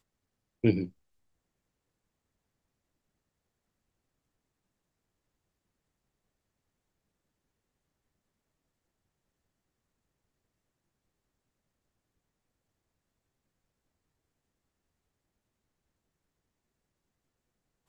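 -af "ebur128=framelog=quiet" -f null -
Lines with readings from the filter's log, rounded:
Integrated loudness:
  I:         -29.4 LUFS
  Threshold: -40.1 LUFS
Loudness range:
  LRA:        12.8 LU
  Threshold: -58.0 LUFS
  LRA low:   -49.9 LUFS
  LRA high:  -37.1 LUFS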